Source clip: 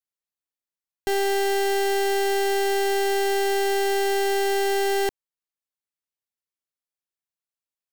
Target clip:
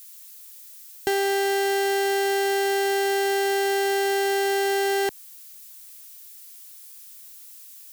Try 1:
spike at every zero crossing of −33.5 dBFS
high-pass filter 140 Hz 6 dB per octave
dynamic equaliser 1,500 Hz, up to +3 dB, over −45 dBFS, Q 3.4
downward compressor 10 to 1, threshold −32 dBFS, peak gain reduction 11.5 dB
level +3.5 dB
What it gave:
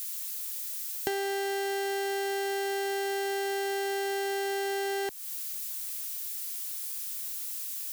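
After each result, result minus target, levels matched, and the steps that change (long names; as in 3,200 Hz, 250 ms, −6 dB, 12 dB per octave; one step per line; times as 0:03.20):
downward compressor: peak gain reduction +8 dB; spike at every zero crossing: distortion +8 dB
change: downward compressor 10 to 1, threshold −23 dBFS, peak gain reduction 3.5 dB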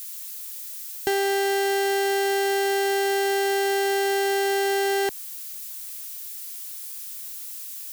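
spike at every zero crossing: distortion +8 dB
change: spike at every zero crossing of −42 dBFS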